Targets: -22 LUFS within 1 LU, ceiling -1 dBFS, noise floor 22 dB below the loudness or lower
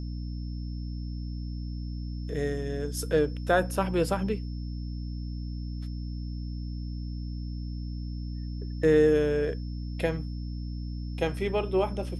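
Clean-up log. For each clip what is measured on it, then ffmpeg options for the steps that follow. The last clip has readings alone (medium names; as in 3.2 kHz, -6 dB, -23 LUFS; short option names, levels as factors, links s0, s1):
hum 60 Hz; highest harmonic 300 Hz; hum level -32 dBFS; steady tone 5.3 kHz; tone level -54 dBFS; loudness -30.5 LUFS; peak level -11.0 dBFS; loudness target -22.0 LUFS
-> -af "bandreject=f=60:t=h:w=6,bandreject=f=120:t=h:w=6,bandreject=f=180:t=h:w=6,bandreject=f=240:t=h:w=6,bandreject=f=300:t=h:w=6"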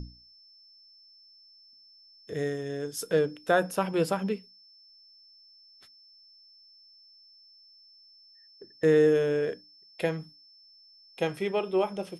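hum not found; steady tone 5.3 kHz; tone level -54 dBFS
-> -af "bandreject=f=5300:w=30"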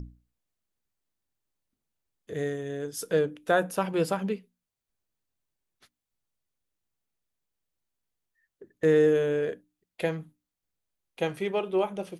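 steady tone not found; loudness -28.0 LUFS; peak level -12.0 dBFS; loudness target -22.0 LUFS
-> -af "volume=2"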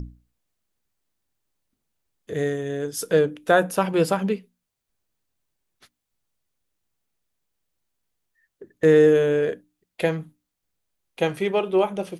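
loudness -22.0 LUFS; peak level -6.0 dBFS; noise floor -82 dBFS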